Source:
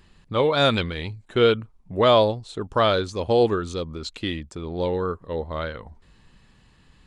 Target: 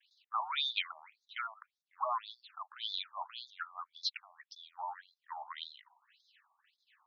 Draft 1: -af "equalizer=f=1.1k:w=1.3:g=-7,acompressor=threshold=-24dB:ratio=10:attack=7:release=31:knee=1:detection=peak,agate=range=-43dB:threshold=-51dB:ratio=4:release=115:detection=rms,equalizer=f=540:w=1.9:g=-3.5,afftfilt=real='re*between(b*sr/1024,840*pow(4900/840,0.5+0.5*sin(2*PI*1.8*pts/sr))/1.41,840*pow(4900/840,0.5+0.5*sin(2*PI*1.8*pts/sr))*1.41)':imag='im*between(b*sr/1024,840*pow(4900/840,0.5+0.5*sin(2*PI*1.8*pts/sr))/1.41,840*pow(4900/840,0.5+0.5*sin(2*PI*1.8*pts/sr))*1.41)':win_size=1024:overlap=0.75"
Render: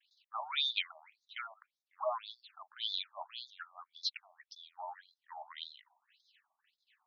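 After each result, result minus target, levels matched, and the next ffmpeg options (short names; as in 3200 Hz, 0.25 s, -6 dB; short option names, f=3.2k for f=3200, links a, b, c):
500 Hz band +6.0 dB; 1000 Hz band -4.5 dB
-af "equalizer=f=1.1k:w=1.3:g=-7,acompressor=threshold=-24dB:ratio=10:attack=7:release=31:knee=1:detection=peak,agate=range=-43dB:threshold=-51dB:ratio=4:release=115:detection=rms,equalizer=f=540:w=1.9:g=-12.5,afftfilt=real='re*between(b*sr/1024,840*pow(4900/840,0.5+0.5*sin(2*PI*1.8*pts/sr))/1.41,840*pow(4900/840,0.5+0.5*sin(2*PI*1.8*pts/sr))*1.41)':imag='im*between(b*sr/1024,840*pow(4900/840,0.5+0.5*sin(2*PI*1.8*pts/sr))/1.41,840*pow(4900/840,0.5+0.5*sin(2*PI*1.8*pts/sr))*1.41)':win_size=1024:overlap=0.75"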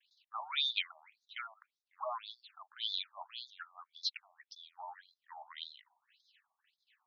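1000 Hz band -6.0 dB
-af "equalizer=f=1.1k:w=1.3:g=3,acompressor=threshold=-24dB:ratio=10:attack=7:release=31:knee=1:detection=peak,agate=range=-43dB:threshold=-51dB:ratio=4:release=115:detection=rms,equalizer=f=540:w=1.9:g=-12.5,afftfilt=real='re*between(b*sr/1024,840*pow(4900/840,0.5+0.5*sin(2*PI*1.8*pts/sr))/1.41,840*pow(4900/840,0.5+0.5*sin(2*PI*1.8*pts/sr))*1.41)':imag='im*between(b*sr/1024,840*pow(4900/840,0.5+0.5*sin(2*PI*1.8*pts/sr))/1.41,840*pow(4900/840,0.5+0.5*sin(2*PI*1.8*pts/sr))*1.41)':win_size=1024:overlap=0.75"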